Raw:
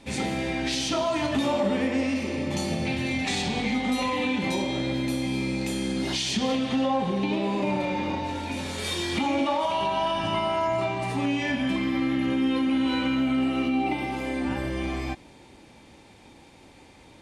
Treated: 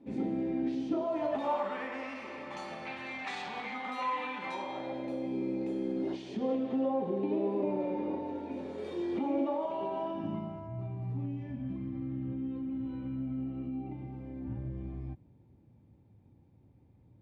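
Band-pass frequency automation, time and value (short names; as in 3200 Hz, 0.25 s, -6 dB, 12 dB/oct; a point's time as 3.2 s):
band-pass, Q 2
0.87 s 290 Hz
1.67 s 1200 Hz
4.54 s 1200 Hz
5.37 s 400 Hz
10.02 s 400 Hz
10.7 s 110 Hz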